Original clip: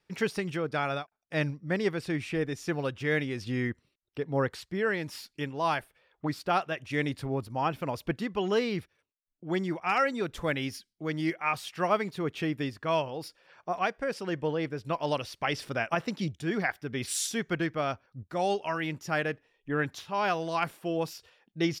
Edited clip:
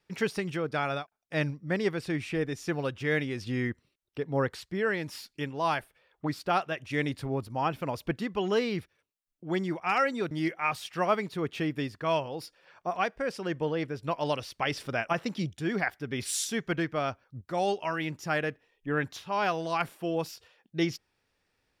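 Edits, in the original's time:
10.31–11.13 cut

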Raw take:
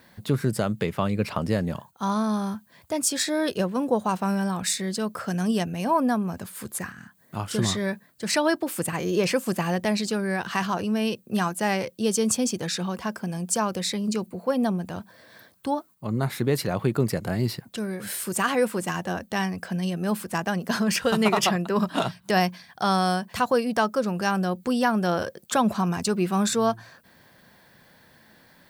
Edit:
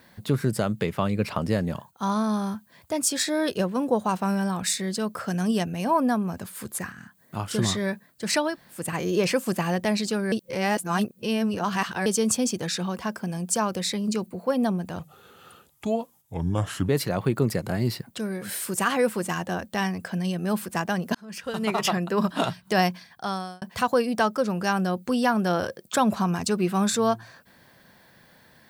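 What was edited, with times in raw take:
8.49–8.8 room tone, crossfade 0.24 s
10.32–12.06 reverse
14.99–16.47 speed 78%
20.73–21.68 fade in
22.53–23.2 fade out

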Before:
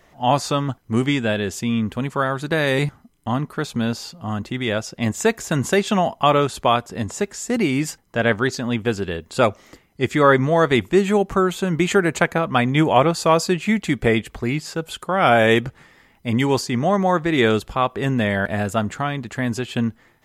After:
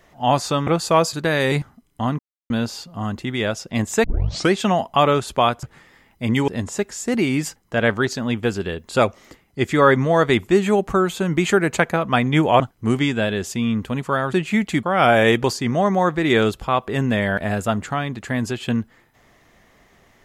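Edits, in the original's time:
0.67–2.4 swap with 13.02–13.48
3.46–3.77 mute
5.31 tape start 0.50 s
13.98–15.06 cut
15.67–16.52 move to 6.9

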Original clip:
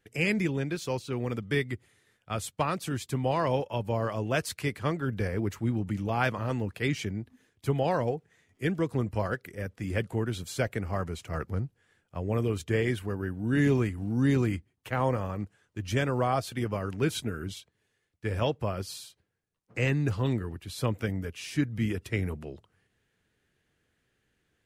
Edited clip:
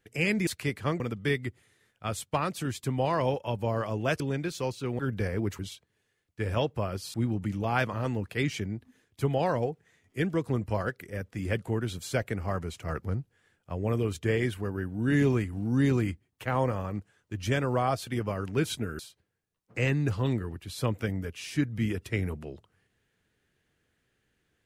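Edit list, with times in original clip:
0.47–1.26 swap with 4.46–4.99
17.44–18.99 move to 5.59

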